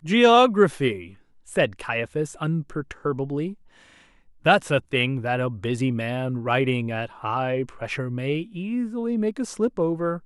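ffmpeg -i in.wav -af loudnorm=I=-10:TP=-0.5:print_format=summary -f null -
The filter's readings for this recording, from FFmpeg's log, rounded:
Input Integrated:    -24.4 LUFS
Input True Peak:      -4.2 dBTP
Input LRA:             4.9 LU
Input Threshold:     -34.7 LUFS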